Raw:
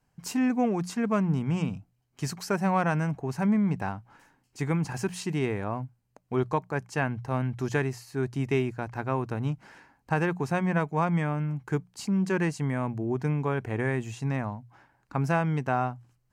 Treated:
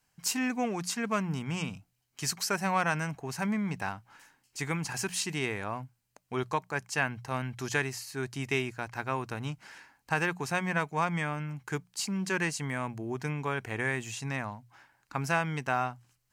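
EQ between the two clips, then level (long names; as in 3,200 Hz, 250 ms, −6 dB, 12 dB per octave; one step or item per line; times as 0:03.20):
tilt shelving filter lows −7.5 dB, about 1,200 Hz
0.0 dB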